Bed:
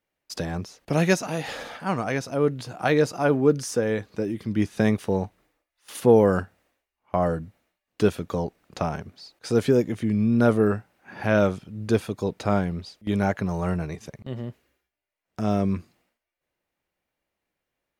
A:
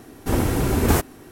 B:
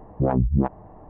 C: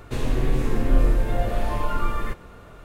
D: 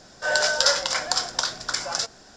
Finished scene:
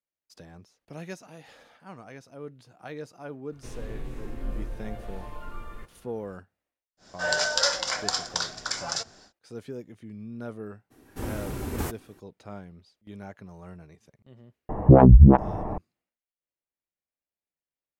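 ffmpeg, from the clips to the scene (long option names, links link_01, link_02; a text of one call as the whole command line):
ffmpeg -i bed.wav -i cue0.wav -i cue1.wav -i cue2.wav -i cue3.wav -filter_complex "[0:a]volume=-18.5dB[link_01];[1:a]bandreject=frequency=680:width=17[link_02];[2:a]alimiter=level_in=16.5dB:limit=-1dB:release=50:level=0:latency=1[link_03];[3:a]atrim=end=2.84,asetpts=PTS-STARTPTS,volume=-15dB,afade=type=in:duration=0.004:curve=hsin,afade=type=out:start_time=2.836:duration=0.004:curve=hsin,adelay=3520[link_04];[4:a]atrim=end=2.36,asetpts=PTS-STARTPTS,volume=-4dB,afade=type=in:duration=0.1,afade=type=out:start_time=2.26:duration=0.1,adelay=6970[link_05];[link_02]atrim=end=1.31,asetpts=PTS-STARTPTS,volume=-12.5dB,afade=type=in:duration=0.02,afade=type=out:start_time=1.29:duration=0.02,adelay=480690S[link_06];[link_03]atrim=end=1.09,asetpts=PTS-STARTPTS,volume=-2.5dB,afade=type=in:duration=0.004:curve=hsin,afade=type=out:start_time=1.086:duration=0.004:curve=hsin,adelay=14690[link_07];[link_01][link_04][link_05][link_06][link_07]amix=inputs=5:normalize=0" out.wav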